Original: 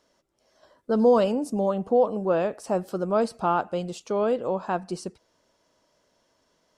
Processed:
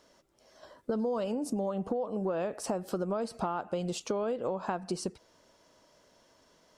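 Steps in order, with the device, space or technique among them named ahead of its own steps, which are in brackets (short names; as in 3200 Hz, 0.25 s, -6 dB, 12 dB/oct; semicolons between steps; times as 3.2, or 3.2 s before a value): serial compression, peaks first (compressor, threshold -29 dBFS, peak gain reduction 13.5 dB; compressor 2.5:1, threshold -35 dBFS, peak gain reduction 6.5 dB); gain +4.5 dB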